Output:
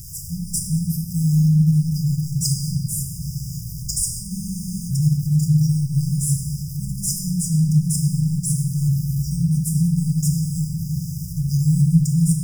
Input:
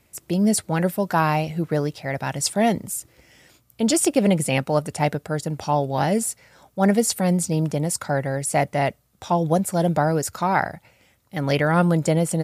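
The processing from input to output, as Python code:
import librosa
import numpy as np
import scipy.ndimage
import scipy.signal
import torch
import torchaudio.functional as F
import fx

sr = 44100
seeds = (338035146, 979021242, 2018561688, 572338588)

p1 = x + 0.5 * 10.0 ** (-29.5 / 20.0) * np.sign(x)
p2 = fx.sample_hold(p1, sr, seeds[0], rate_hz=9200.0, jitter_pct=0)
p3 = p1 + (p2 * 10.0 ** (-4.5 / 20.0))
p4 = fx.brickwall_bandstop(p3, sr, low_hz=170.0, high_hz=4800.0)
p5 = fx.room_shoebox(p4, sr, seeds[1], volume_m3=220.0, walls='hard', distance_m=0.67)
p6 = fx.spec_freeze(p5, sr, seeds[2], at_s=4.32, hold_s=0.57)
y = p6 * 10.0 ** (-1.5 / 20.0)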